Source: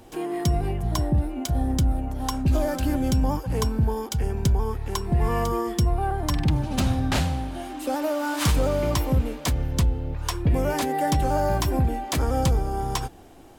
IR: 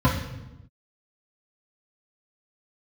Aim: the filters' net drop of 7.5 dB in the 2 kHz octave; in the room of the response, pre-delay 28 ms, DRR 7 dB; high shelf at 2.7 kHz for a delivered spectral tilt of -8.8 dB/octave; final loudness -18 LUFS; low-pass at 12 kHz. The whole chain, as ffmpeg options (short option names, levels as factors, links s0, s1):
-filter_complex "[0:a]lowpass=12000,equalizer=f=2000:t=o:g=-8.5,highshelf=f=2700:g=-4.5,asplit=2[s0][s1];[1:a]atrim=start_sample=2205,adelay=28[s2];[s1][s2]afir=irnorm=-1:irlink=0,volume=0.0631[s3];[s0][s3]amix=inputs=2:normalize=0,volume=0.891"